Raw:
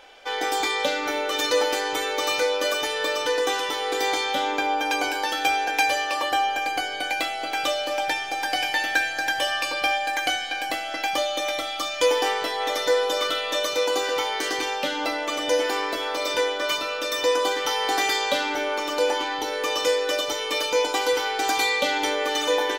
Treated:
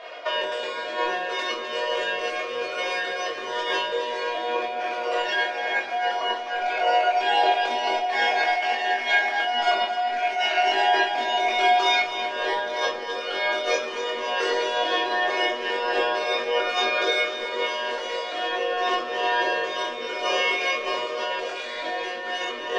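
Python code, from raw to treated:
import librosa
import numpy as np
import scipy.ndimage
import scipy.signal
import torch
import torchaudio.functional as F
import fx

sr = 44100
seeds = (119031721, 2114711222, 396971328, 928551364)

p1 = np.minimum(x, 2.0 * 10.0 ** (-20.0 / 20.0) - x)
p2 = scipy.signal.sosfilt(scipy.signal.butter(4, 230.0, 'highpass', fs=sr, output='sos'), p1)
p3 = fx.high_shelf(p2, sr, hz=5300.0, db=-8.5)
p4 = fx.hum_notches(p3, sr, base_hz=60, count=10)
p5 = fx.over_compress(p4, sr, threshold_db=-31.0, ratio=-0.5)
p6 = fx.pitch_keep_formants(p5, sr, semitones=3.5)
p7 = fx.air_absorb(p6, sr, metres=120.0)
p8 = fx.doubler(p7, sr, ms=21.0, db=-4.0)
p9 = p8 + fx.echo_split(p8, sr, split_hz=700.0, low_ms=506, high_ms=256, feedback_pct=52, wet_db=-10.5, dry=0)
p10 = fx.room_shoebox(p9, sr, seeds[0], volume_m3=240.0, walls='furnished', distance_m=1.7)
y = F.gain(torch.from_numpy(p10), 3.5).numpy()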